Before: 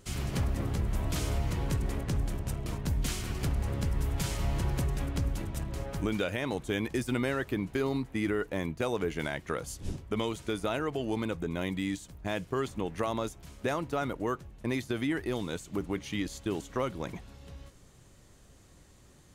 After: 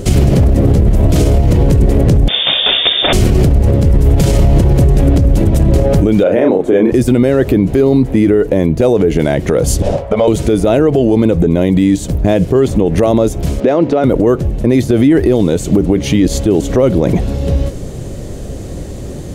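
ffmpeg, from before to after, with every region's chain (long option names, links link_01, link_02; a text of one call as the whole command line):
ffmpeg -i in.wav -filter_complex "[0:a]asettb=1/sr,asplit=3[link_01][link_02][link_03];[link_01]atrim=end=2.284[link_04];[link_02]atrim=start=2.28:end=3.13,asetpts=PTS-STARTPTS,afade=type=in:duration=0.004:curve=qsin,afade=type=out:start_time=0.846:duration=0.004:curve=qsin,highpass=frequency=200:width=0.5412,highpass=frequency=200:width=1.3066,acontrast=85,lowpass=frequency=3200:width_type=q:width=0.5098,lowpass=frequency=3200:width_type=q:width=0.6013,lowpass=frequency=3200:width_type=q:width=0.9,lowpass=frequency=3200:width_type=q:width=2.563,afreqshift=-3800[link_05];[link_03]atrim=start=3.126[link_06];[link_04][link_05]acrossfade=duration=0.004:curve1=hsin:curve2=qsin[link_07];[link_07][link_06]acrossfade=duration=0.004:curve1=qsin:curve2=hsin,asettb=1/sr,asplit=3[link_08][link_09][link_10];[link_08]atrim=end=6.234[link_11];[link_09]atrim=start=6.23:end=6.92,asetpts=PTS-STARTPTS,afade=type=in:duration=0.004:curve=qsin,afade=type=out:start_time=0.686:duration=0.004:curve=qsin,acrossover=split=210 2100:gain=0.0891 1 0.178[link_12][link_13][link_14];[link_12][link_13][link_14]amix=inputs=3:normalize=0,asplit=2[link_15][link_16];[link_16]adelay=32,volume=-3dB[link_17];[link_15][link_17]amix=inputs=2:normalize=0,atrim=end_sample=30429[link_18];[link_10]atrim=start=6.916[link_19];[link_11][link_18]acrossfade=duration=0.004:curve1=hsin:curve2=qsin[link_20];[link_20][link_19]acrossfade=duration=0.004:curve1=qsin:curve2=hsin,asettb=1/sr,asplit=3[link_21][link_22][link_23];[link_21]atrim=end=9.824[link_24];[link_22]atrim=start=9.82:end=10.28,asetpts=PTS-STARTPTS,afade=type=in:duration=0.004:curve=qsin,afade=type=out:start_time=0.456:duration=0.004:curve=qsin,lowshelf=frequency=450:width_type=q:width=3:gain=-9,asplit=2[link_25][link_26];[link_26]highpass=frequency=720:poles=1,volume=11dB,asoftclip=type=tanh:threshold=-19.5dB[link_27];[link_25][link_27]amix=inputs=2:normalize=0,lowpass=frequency=1100:poles=1,volume=-6dB,acompressor=threshold=-39dB:ratio=6:attack=3.2:release=140:knee=1:detection=peak[link_28];[link_23]atrim=start=10.276[link_29];[link_24][link_28]acrossfade=duration=0.004:curve1=hsin:curve2=qsin[link_30];[link_30][link_29]acrossfade=duration=0.004:curve1=qsin:curve2=hsin,asettb=1/sr,asplit=3[link_31][link_32][link_33];[link_31]atrim=end=13.604[link_34];[link_32]atrim=start=13.6:end=14.04,asetpts=PTS-STARTPTS,afade=type=in:duration=0.004:curve=qsin,afade=type=out:start_time=0.436:duration=0.004:curve=qsin,highpass=220,lowpass=4200,acompressor=threshold=-40dB:ratio=4:attack=3.2:release=140:knee=1:detection=peak[link_35];[link_33]atrim=start=14.036[link_36];[link_34][link_35]acrossfade=duration=0.004:curve1=hsin:curve2=qsin[link_37];[link_37][link_36]acrossfade=duration=0.004:curve1=qsin:curve2=hsin,lowshelf=frequency=770:width_type=q:width=1.5:gain=10,acompressor=threshold=-24dB:ratio=6,alimiter=level_in=24.5dB:limit=-1dB:release=50:level=0:latency=1,volume=-1dB" out.wav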